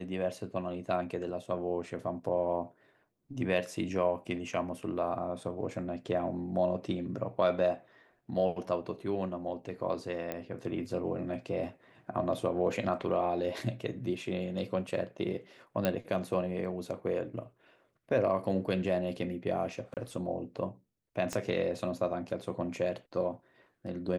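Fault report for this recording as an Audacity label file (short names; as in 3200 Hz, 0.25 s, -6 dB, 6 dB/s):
10.320000	10.320000	pop -21 dBFS
15.850000	15.850000	pop -15 dBFS
19.940000	19.970000	gap 28 ms
21.330000	21.330000	pop -20 dBFS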